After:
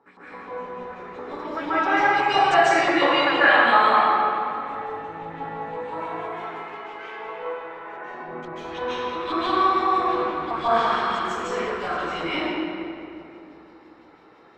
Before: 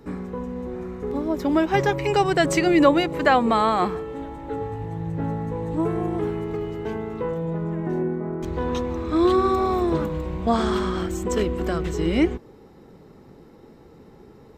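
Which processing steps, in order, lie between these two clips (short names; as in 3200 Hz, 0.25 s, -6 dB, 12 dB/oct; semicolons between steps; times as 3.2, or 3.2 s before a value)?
5.76–8.05 HPF 520 Hz 12 dB/oct; LFO band-pass saw up 5.9 Hz 840–4100 Hz; reverb RT60 2.7 s, pre-delay 0.132 s, DRR -13.5 dB; gain -2 dB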